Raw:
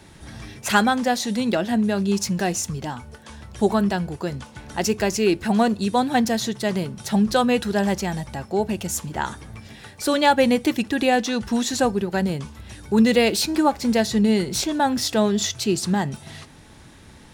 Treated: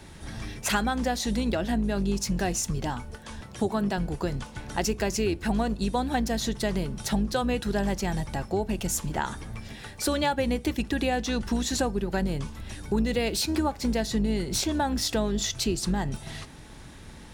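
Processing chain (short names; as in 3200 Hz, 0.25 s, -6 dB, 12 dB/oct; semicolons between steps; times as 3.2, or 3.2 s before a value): octaver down 2 oct, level -3 dB; 3.41–3.98 HPF 110 Hz 12 dB/oct; compressor 4:1, threshold -24 dBFS, peak gain reduction 12 dB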